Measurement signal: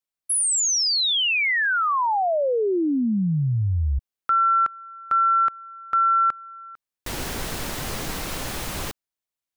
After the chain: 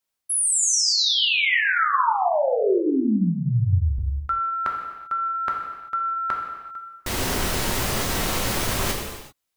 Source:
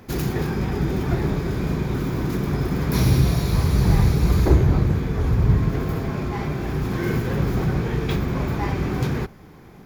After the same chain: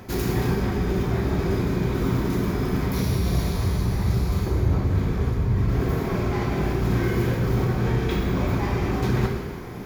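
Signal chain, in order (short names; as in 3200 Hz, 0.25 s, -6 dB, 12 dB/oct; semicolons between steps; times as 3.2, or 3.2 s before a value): reverse; compressor 6:1, threshold -30 dBFS; reverse; non-linear reverb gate 0.42 s falling, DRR -0.5 dB; gain +6.5 dB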